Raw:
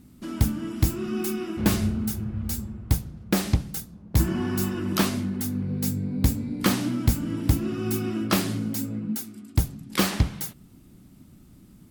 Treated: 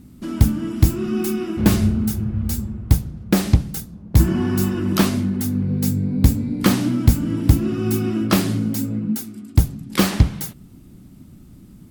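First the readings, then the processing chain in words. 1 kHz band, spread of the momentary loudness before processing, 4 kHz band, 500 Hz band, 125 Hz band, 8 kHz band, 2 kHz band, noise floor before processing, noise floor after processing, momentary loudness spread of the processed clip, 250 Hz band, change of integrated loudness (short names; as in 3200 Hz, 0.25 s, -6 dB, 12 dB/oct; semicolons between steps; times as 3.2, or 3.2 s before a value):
+3.5 dB, 6 LU, +3.0 dB, +5.5 dB, +7.5 dB, +3.0 dB, +3.0 dB, -52 dBFS, -44 dBFS, 6 LU, +7.0 dB, +6.5 dB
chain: low shelf 410 Hz +5 dB; gain +3 dB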